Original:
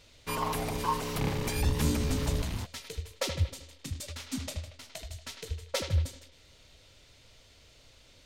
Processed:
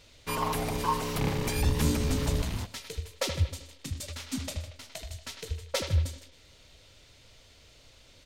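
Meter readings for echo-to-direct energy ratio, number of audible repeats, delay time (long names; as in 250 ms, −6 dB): −18.5 dB, 1, 121 ms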